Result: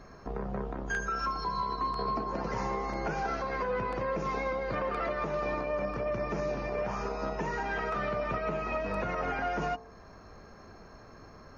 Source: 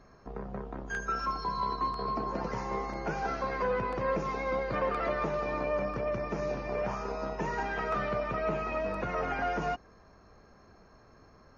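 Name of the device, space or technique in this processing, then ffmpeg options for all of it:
stacked limiters: -af "bandreject=frequency=63.67:width_type=h:width=4,bandreject=frequency=127.34:width_type=h:width=4,bandreject=frequency=191.01:width_type=h:width=4,bandreject=frequency=254.68:width_type=h:width=4,bandreject=frequency=318.35:width_type=h:width=4,bandreject=frequency=382.02:width_type=h:width=4,bandreject=frequency=445.69:width_type=h:width=4,bandreject=frequency=509.36:width_type=h:width=4,bandreject=frequency=573.03:width_type=h:width=4,bandreject=frequency=636.7:width_type=h:width=4,bandreject=frequency=700.37:width_type=h:width=4,bandreject=frequency=764.04:width_type=h:width=4,bandreject=frequency=827.71:width_type=h:width=4,bandreject=frequency=891.38:width_type=h:width=4,bandreject=frequency=955.05:width_type=h:width=4,bandreject=frequency=1018.72:width_type=h:width=4,bandreject=frequency=1082.39:width_type=h:width=4,bandreject=frequency=1146.06:width_type=h:width=4,bandreject=frequency=1209.73:width_type=h:width=4,bandreject=frequency=1273.4:width_type=h:width=4,alimiter=level_in=1.5dB:limit=-24dB:level=0:latency=1:release=482,volume=-1.5dB,alimiter=level_in=6.5dB:limit=-24dB:level=0:latency=1:release=232,volume=-6.5dB,volume=7dB"

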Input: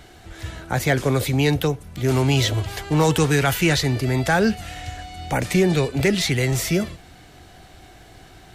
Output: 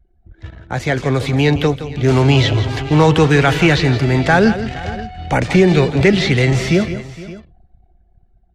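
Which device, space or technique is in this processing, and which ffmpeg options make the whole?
voice memo with heavy noise removal: -filter_complex "[0:a]anlmdn=6.31,dynaudnorm=framelen=280:gausssize=9:maxgain=11.5dB,lowpass=6200,acrossover=split=4000[link_01][link_02];[link_02]acompressor=threshold=-32dB:ratio=4:attack=1:release=60[link_03];[link_01][link_03]amix=inputs=2:normalize=0,aecho=1:1:168|464|565:0.251|0.112|0.112"

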